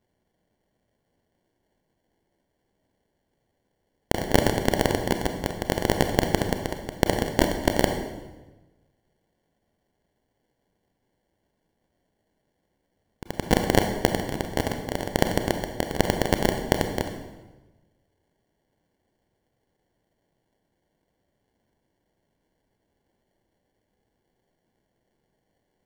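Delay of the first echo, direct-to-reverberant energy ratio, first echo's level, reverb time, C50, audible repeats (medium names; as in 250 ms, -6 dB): no echo, 5.0 dB, no echo, 1.1 s, 6.5 dB, no echo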